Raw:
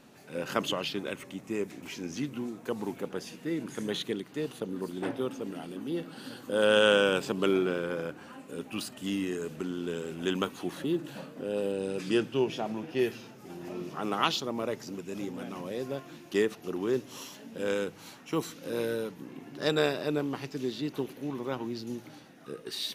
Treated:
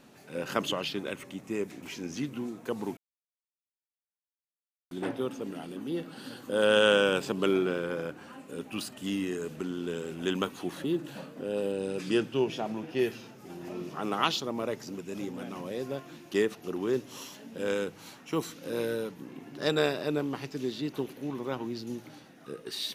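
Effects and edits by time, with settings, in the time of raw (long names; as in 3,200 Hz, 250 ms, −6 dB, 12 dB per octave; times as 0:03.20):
0:02.97–0:04.91: silence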